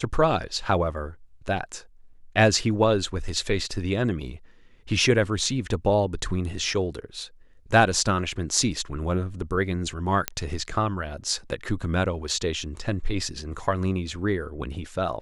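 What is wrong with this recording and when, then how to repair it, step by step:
10.28 pop -6 dBFS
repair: de-click

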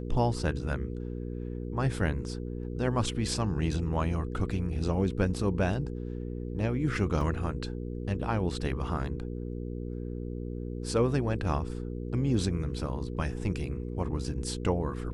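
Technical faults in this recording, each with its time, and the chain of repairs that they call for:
hum 60 Hz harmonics 8 -36 dBFS
7.21 gap 2.3 ms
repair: de-hum 60 Hz, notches 8; interpolate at 7.21, 2.3 ms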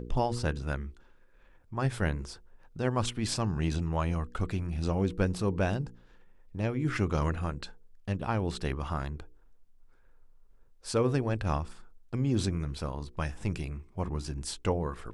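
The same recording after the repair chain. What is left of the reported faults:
none

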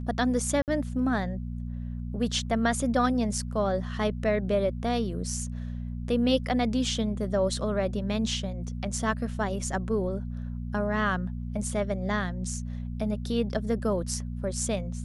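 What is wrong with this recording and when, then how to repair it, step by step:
hum 60 Hz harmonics 4 -34 dBFS
0.62–0.68 gap 58 ms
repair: de-hum 60 Hz, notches 4; interpolate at 0.62, 58 ms

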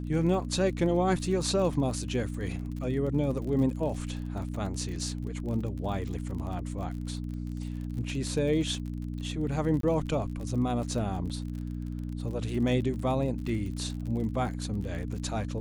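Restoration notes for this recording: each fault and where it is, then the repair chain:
crackle 41/s -37 dBFS
hum 60 Hz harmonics 5 -35 dBFS
9.81–9.83 gap 23 ms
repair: de-click; de-hum 60 Hz, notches 5; interpolate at 9.81, 23 ms

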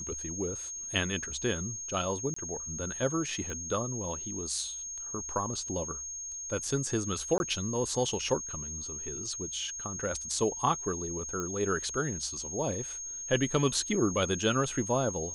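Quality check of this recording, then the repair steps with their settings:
tone 6500 Hz -37 dBFS
2.34–2.36 gap 24 ms
3.5 pop -26 dBFS
7.38–7.4 gap 21 ms
11.4 pop -22 dBFS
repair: de-click; notch 6500 Hz, Q 30; interpolate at 2.34, 24 ms; interpolate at 7.38, 21 ms

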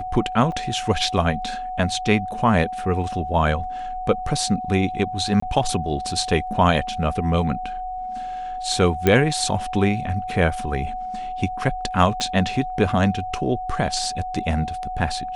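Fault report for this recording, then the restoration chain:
tone 740 Hz -27 dBFS
0.52 gap 3.6 ms
5.4–5.42 gap 24 ms
9.07 pop -5 dBFS
12.2 pop -13 dBFS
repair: de-click; notch 740 Hz, Q 30; interpolate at 0.52, 3.6 ms; interpolate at 5.4, 24 ms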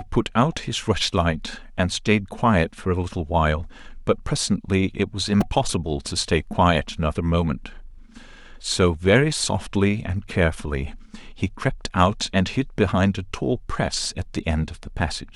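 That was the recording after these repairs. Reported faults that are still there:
12.2 pop

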